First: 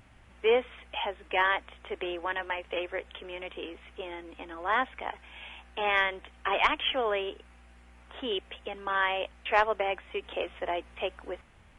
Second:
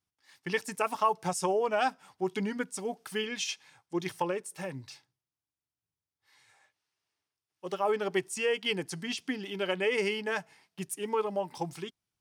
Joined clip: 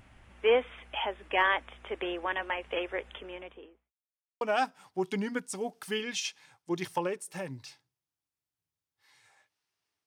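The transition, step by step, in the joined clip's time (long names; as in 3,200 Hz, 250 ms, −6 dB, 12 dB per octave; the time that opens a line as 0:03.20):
first
0:03.07–0:03.94: fade out and dull
0:03.94–0:04.41: silence
0:04.41: continue with second from 0:01.65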